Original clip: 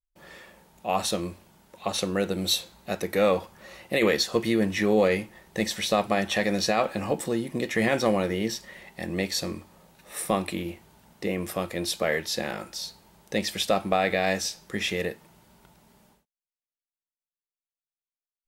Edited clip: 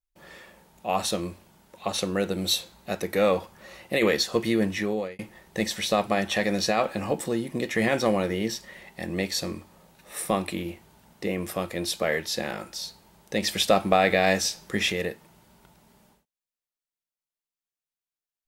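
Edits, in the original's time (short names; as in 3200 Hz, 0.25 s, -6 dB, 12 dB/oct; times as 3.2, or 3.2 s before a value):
4.66–5.19 fade out
13.43–14.92 gain +3.5 dB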